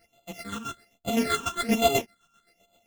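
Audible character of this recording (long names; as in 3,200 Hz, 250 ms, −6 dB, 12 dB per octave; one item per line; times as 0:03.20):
a buzz of ramps at a fixed pitch in blocks of 64 samples
phaser sweep stages 8, 1.2 Hz, lowest notch 600–1,700 Hz
chopped level 7.7 Hz, depth 60%, duty 40%
a shimmering, thickened sound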